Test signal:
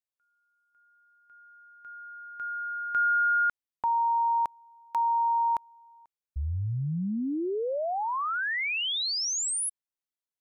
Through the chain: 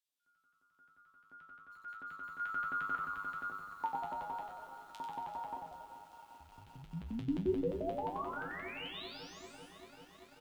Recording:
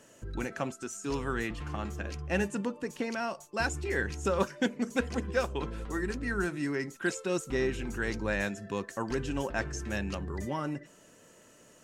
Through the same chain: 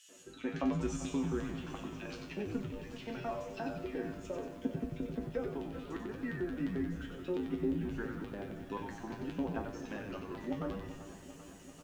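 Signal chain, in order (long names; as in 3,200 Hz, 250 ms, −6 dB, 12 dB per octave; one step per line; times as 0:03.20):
treble cut that deepens with the level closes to 660 Hz, closed at −26.5 dBFS
high-shelf EQ 2,700 Hz +4 dB
speech leveller within 4 dB 2 s
auto-filter high-pass square 5.7 Hz 260–3,200 Hz
tuned comb filter 53 Hz, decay 0.28 s, harmonics odd, mix 90%
echo with shifted repeats 93 ms, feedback 50%, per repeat −100 Hz, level −5 dB
four-comb reverb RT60 2.5 s, combs from 29 ms, DRR 14 dB
feedback echo at a low word length 390 ms, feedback 80%, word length 10 bits, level −13.5 dB
level +2 dB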